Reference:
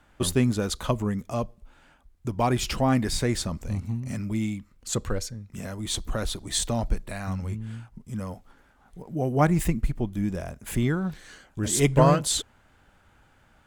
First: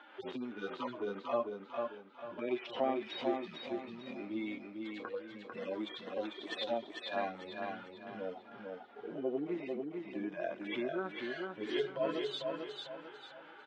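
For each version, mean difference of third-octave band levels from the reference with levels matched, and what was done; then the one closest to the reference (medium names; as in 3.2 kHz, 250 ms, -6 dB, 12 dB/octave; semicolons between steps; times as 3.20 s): 13.0 dB: harmonic-percussive separation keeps harmonic; compression 4:1, threshold -37 dBFS, peak gain reduction 18 dB; Chebyshev band-pass 340–3500 Hz, order 3; feedback delay 447 ms, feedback 36%, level -4 dB; trim +9.5 dB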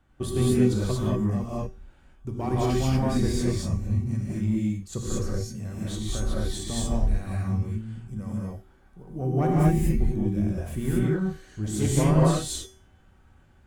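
8.5 dB: single-diode clipper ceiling -11 dBFS; bass shelf 430 Hz +11 dB; feedback comb 380 Hz, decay 0.4 s, harmonics all, mix 80%; gated-style reverb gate 260 ms rising, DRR -5.5 dB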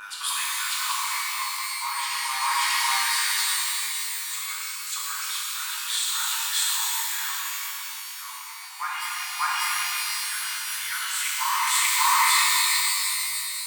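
26.0 dB: steep high-pass 910 Hz 96 dB/octave; peaking EQ 6.3 kHz -7.5 dB 0.58 oct; on a send: reverse echo 593 ms -4.5 dB; on the sum: pitch-shifted reverb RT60 3.1 s, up +12 st, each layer -2 dB, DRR -6.5 dB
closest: second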